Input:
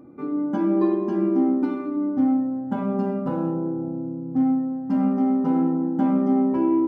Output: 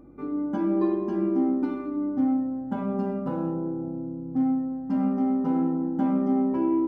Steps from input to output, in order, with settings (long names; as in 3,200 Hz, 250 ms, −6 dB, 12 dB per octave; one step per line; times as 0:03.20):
mains hum 50 Hz, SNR 33 dB
level −3.5 dB